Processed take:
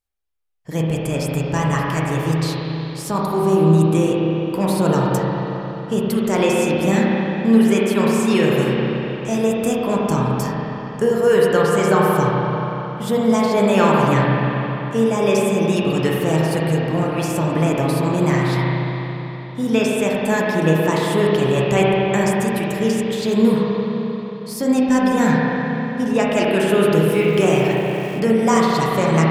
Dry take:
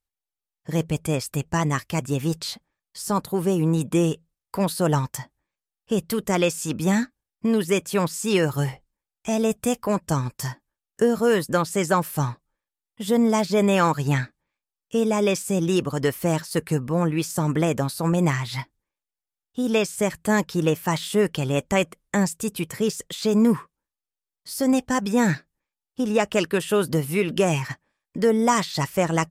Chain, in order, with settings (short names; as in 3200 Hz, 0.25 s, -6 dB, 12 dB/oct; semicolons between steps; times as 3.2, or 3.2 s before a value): spring tank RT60 3.8 s, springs 31/44 ms, chirp 45 ms, DRR -4.5 dB; 27.08–28.2 sample gate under -35.5 dBFS